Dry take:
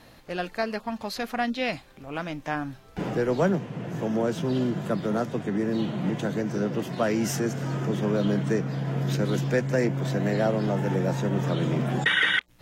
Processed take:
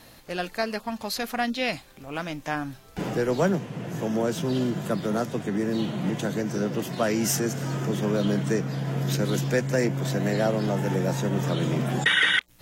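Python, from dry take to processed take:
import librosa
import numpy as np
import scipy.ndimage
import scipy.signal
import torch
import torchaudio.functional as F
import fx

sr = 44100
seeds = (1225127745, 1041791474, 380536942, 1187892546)

y = fx.high_shelf(x, sr, hz=5100.0, db=10.5)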